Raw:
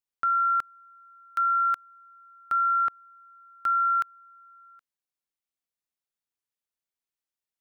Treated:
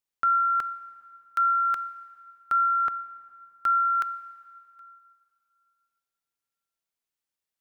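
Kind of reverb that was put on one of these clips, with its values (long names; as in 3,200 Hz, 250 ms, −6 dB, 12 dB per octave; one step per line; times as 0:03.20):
dense smooth reverb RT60 2.5 s, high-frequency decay 0.8×, DRR 14.5 dB
level +2 dB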